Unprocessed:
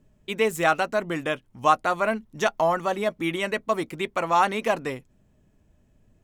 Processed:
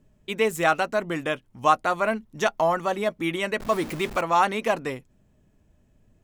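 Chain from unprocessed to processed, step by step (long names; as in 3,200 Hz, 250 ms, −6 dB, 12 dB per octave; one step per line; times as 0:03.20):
0:03.60–0:04.21: converter with a step at zero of −31.5 dBFS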